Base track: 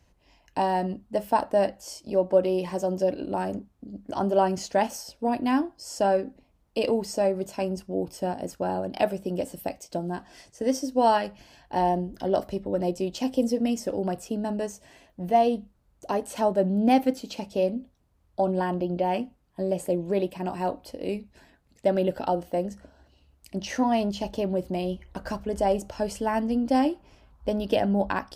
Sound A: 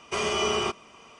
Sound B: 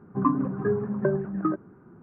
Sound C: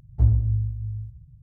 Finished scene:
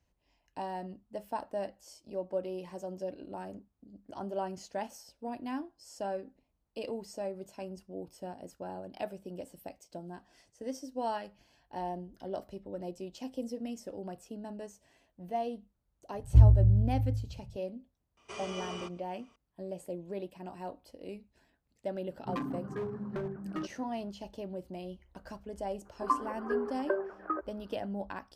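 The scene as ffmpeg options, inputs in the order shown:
-filter_complex "[2:a]asplit=2[s0][s1];[0:a]volume=0.211[s2];[3:a]tiltshelf=f=970:g=6.5[s3];[s0]asoftclip=type=hard:threshold=0.075[s4];[s1]highpass=f=440:w=0.5412,highpass=f=440:w=1.3066[s5];[s3]atrim=end=1.42,asetpts=PTS-STARTPTS,volume=0.501,afade=t=in:d=0.004:c=hsin,afade=t=out:st=1.416:d=0.004:c=hsin,adelay=16150[s6];[1:a]atrim=end=1.19,asetpts=PTS-STARTPTS,volume=0.168,afade=t=in:d=0.004:c=hsin,afade=t=out:st=1.186:d=0.004:c=hsin,adelay=18170[s7];[s4]atrim=end=2.02,asetpts=PTS-STARTPTS,volume=0.335,afade=t=in:d=0.004:c=hsin,afade=t=out:st=2.016:d=0.004:c=hsin,adelay=22110[s8];[s5]atrim=end=2.02,asetpts=PTS-STARTPTS,volume=0.794,afade=t=in:d=0.004:c=hsin,afade=t=out:st=2.016:d=0.004:c=hsin,adelay=25850[s9];[s2][s6][s7][s8][s9]amix=inputs=5:normalize=0"

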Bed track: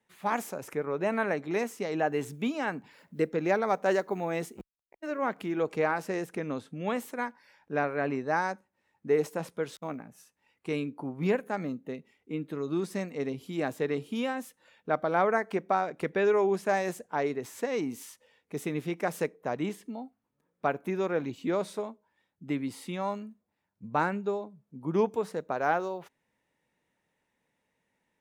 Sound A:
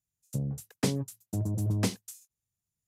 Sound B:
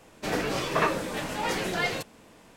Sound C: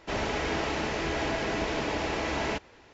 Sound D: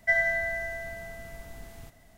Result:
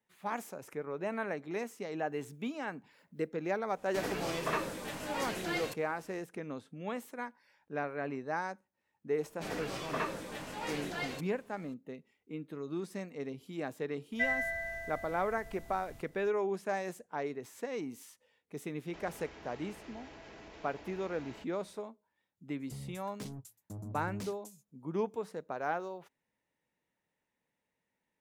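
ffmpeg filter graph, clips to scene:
-filter_complex "[2:a]asplit=2[s0][s1];[0:a]volume=0.422[s2];[s0]crystalizer=i=0.5:c=0[s3];[3:a]acompressor=threshold=0.0112:ratio=4:attack=18:release=51:knee=1:detection=rms[s4];[1:a]asoftclip=type=tanh:threshold=0.0266[s5];[s3]atrim=end=2.56,asetpts=PTS-STARTPTS,volume=0.355,afade=t=in:d=0.1,afade=t=out:st=2.46:d=0.1,adelay=3710[s6];[s1]atrim=end=2.56,asetpts=PTS-STARTPTS,volume=0.299,afade=t=in:d=0.004:c=hsin,afade=t=out:st=2.556:d=0.004:c=hsin,adelay=9180[s7];[4:a]atrim=end=2.17,asetpts=PTS-STARTPTS,volume=0.422,afade=t=in:d=0.004:c=hsin,afade=t=out:st=2.166:d=0.004:c=hsin,adelay=622692S[s8];[s4]atrim=end=2.93,asetpts=PTS-STARTPTS,volume=0.211,afade=t=in:d=0.004:c=hsin,afade=t=out:st=2.926:d=0.004:c=hsin,adelay=18860[s9];[s5]atrim=end=2.87,asetpts=PTS-STARTPTS,volume=0.376,afade=t=in:d=0.004:c=hsin,afade=t=out:st=2.866:d=0.004:c=hsin,adelay=22370[s10];[s2][s6][s7][s8][s9][s10]amix=inputs=6:normalize=0"

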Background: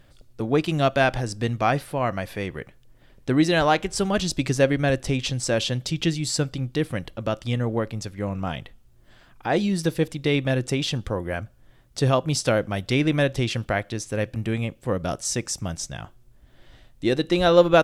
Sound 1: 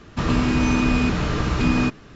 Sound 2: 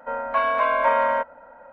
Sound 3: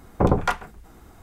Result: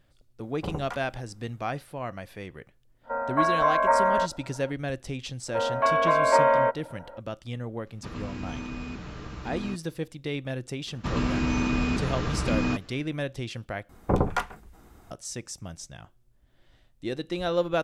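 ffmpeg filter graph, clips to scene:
-filter_complex "[3:a]asplit=2[s0][s1];[2:a]asplit=2[s2][s3];[1:a]asplit=2[s4][s5];[0:a]volume=0.316[s6];[s2]lowpass=f=1800:w=0.5412,lowpass=f=1800:w=1.3066[s7];[s3]equalizer=f=380:w=1.5:g=13[s8];[s6]asplit=2[s9][s10];[s9]atrim=end=13.894[s11];[s1]atrim=end=1.22,asetpts=PTS-STARTPTS,volume=0.596[s12];[s10]atrim=start=15.106[s13];[s0]atrim=end=1.22,asetpts=PTS-STARTPTS,volume=0.168,afade=t=in:d=0.004:c=hsin,afade=t=out:st=1.216:d=0.004:c=hsin,adelay=430[s14];[s7]atrim=end=1.72,asetpts=PTS-STARTPTS,volume=0.841,afade=t=in:d=0.05,afade=t=out:st=1.67:d=0.05,adelay=3030[s15];[s8]atrim=end=1.72,asetpts=PTS-STARTPTS,volume=0.708,afade=t=in:d=0.004:c=hsin,afade=t=out:st=1.716:d=0.004:c=hsin,adelay=5480[s16];[s4]atrim=end=2.15,asetpts=PTS-STARTPTS,volume=0.141,afade=t=in:d=0.004:c=hsin,afade=t=out:st=2.146:d=0.004:c=hsin,adelay=346626S[s17];[s5]atrim=end=2.15,asetpts=PTS-STARTPTS,volume=0.473,afade=t=in:d=0.004:c=hsin,afade=t=out:st=2.146:d=0.004:c=hsin,adelay=10870[s18];[s11][s12]acrossfade=d=0.004:c1=hsin:c2=hsin[s19];[s19][s13]acrossfade=d=0.004:c1=hsin:c2=hsin[s20];[s20][s14][s15][s16][s17][s18]amix=inputs=6:normalize=0"

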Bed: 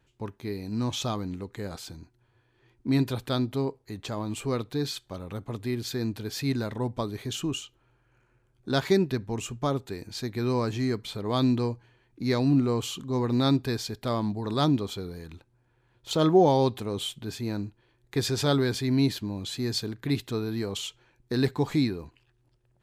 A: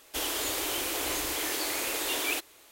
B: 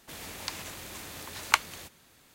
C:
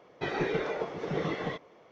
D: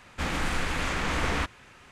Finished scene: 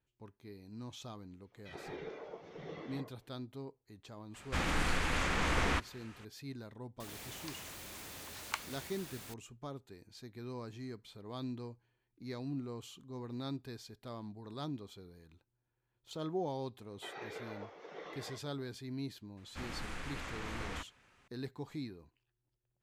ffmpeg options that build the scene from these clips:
-filter_complex "[3:a]asplit=2[s0][s1];[4:a]asplit=2[s2][s3];[0:a]volume=0.133[s4];[s0]acrossover=split=180|1500[s5][s6][s7];[s5]adelay=30[s8];[s6]adelay=80[s9];[s8][s9][s7]amix=inputs=3:normalize=0[s10];[2:a]aeval=exprs='val(0)+0.5*0.0355*sgn(val(0))':c=same[s11];[s1]highpass=470[s12];[s10]atrim=end=1.91,asetpts=PTS-STARTPTS,volume=0.2,afade=t=in:d=0.004:c=hsin,afade=t=out:st=1.906:d=0.004:c=hsin,adelay=1440[s13];[s2]atrim=end=1.91,asetpts=PTS-STARTPTS,volume=0.631,afade=t=in:d=0.004:c=hsin,afade=t=out:st=1.906:d=0.004:c=hsin,adelay=4340[s14];[s11]atrim=end=2.34,asetpts=PTS-STARTPTS,volume=0.158,afade=t=in:d=0.004:c=hsin,afade=t=out:st=2.336:d=0.004:c=hsin,adelay=7000[s15];[s12]atrim=end=1.91,asetpts=PTS-STARTPTS,volume=0.237,afade=t=in:d=0.004:c=hsin,afade=t=out:st=1.906:d=0.004:c=hsin,adelay=16810[s16];[s3]atrim=end=1.91,asetpts=PTS-STARTPTS,volume=0.188,afade=t=in:d=0.004:c=hsin,afade=t=out:st=1.906:d=0.004:c=hsin,adelay=19370[s17];[s4][s13][s14][s15][s16][s17]amix=inputs=6:normalize=0"

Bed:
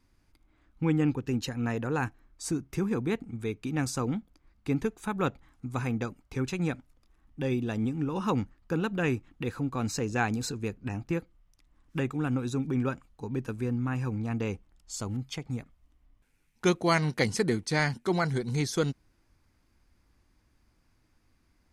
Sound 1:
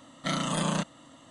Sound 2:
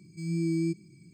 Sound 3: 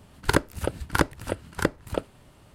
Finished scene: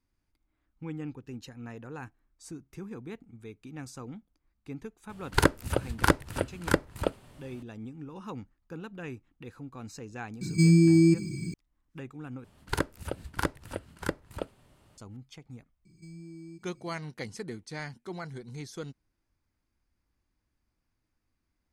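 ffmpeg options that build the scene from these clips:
-filter_complex "[3:a]asplit=2[s0][s1];[2:a]asplit=2[s2][s3];[0:a]volume=0.251[s4];[s2]alimiter=level_in=31.6:limit=0.891:release=50:level=0:latency=1[s5];[s3]acompressor=threshold=0.0141:ratio=6:attack=3.2:release=140:knee=1:detection=peak[s6];[s4]asplit=2[s7][s8];[s7]atrim=end=12.444[s9];[s1]atrim=end=2.54,asetpts=PTS-STARTPTS,volume=0.422[s10];[s8]atrim=start=14.976[s11];[s0]atrim=end=2.54,asetpts=PTS-STARTPTS,volume=0.944,afade=t=in:d=0.004:c=hsin,afade=t=out:st=2.536:d=0.004:c=hsin,adelay=224469S[s12];[s5]atrim=end=1.13,asetpts=PTS-STARTPTS,volume=0.266,afade=t=in:d=0.004:c=hsin,afade=t=out:st=1.126:d=0.004:c=hsin,adelay=10410[s13];[s6]atrim=end=1.13,asetpts=PTS-STARTPTS,volume=0.501,afade=t=in:d=0.004:c=hsin,afade=t=out:st=1.126:d=0.004:c=hsin,adelay=15850[s14];[s9][s10]acrossfade=d=0.004:c1=hsin:c2=hsin[s15];[s15][s11]acrossfade=d=0.004:c1=hsin:c2=hsin[s16];[s16][s12][s13][s14]amix=inputs=4:normalize=0"

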